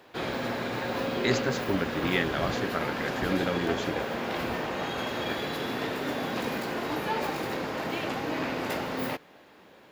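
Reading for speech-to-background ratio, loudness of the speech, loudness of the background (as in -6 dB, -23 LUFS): 0.5 dB, -31.0 LUFS, -31.5 LUFS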